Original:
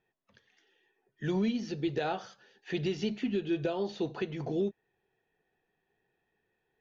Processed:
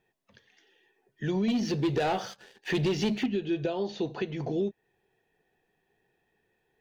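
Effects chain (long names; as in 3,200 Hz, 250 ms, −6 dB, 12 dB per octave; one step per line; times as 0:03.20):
0:01.48–0:03.26: leveller curve on the samples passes 2
parametric band 1,300 Hz −4 dB 0.44 octaves
in parallel at +0.5 dB: downward compressor, threshold −38 dBFS, peak gain reduction 12 dB
on the sum: level −1 dB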